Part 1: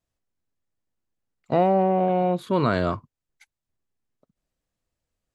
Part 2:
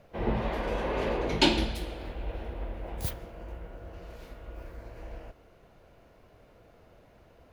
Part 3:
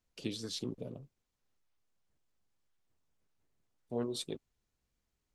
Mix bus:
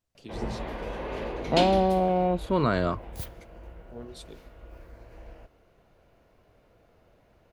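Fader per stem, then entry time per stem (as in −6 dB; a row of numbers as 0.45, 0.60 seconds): −2.5, −4.0, −7.0 decibels; 0.00, 0.15, 0.00 seconds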